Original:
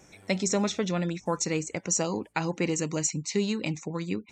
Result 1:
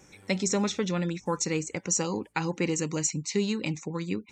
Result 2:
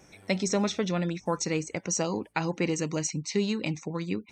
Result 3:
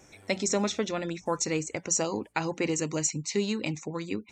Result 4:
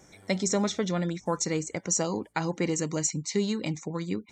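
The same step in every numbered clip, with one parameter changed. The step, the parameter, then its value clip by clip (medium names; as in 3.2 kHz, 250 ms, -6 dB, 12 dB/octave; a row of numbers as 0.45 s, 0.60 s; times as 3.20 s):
band-stop, frequency: 660 Hz, 7.2 kHz, 180 Hz, 2.6 kHz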